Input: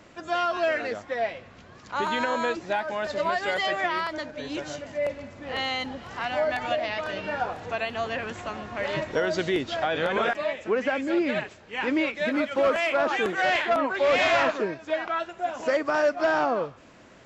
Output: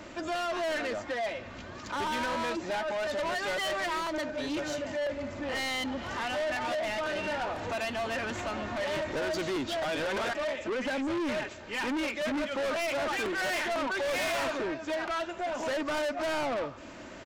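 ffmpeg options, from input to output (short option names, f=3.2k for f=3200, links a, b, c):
-filter_complex "[0:a]aecho=1:1:3.3:0.4,asplit=2[a][b];[b]acompressor=threshold=-36dB:ratio=6,volume=-0.5dB[c];[a][c]amix=inputs=2:normalize=0,asoftclip=type=tanh:threshold=-29dB"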